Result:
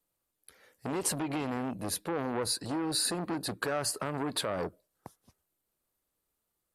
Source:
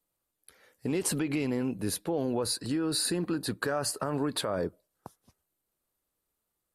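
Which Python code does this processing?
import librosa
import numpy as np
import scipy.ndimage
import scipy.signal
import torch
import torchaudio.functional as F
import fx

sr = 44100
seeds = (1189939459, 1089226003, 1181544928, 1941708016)

y = fx.transformer_sat(x, sr, knee_hz=1200.0)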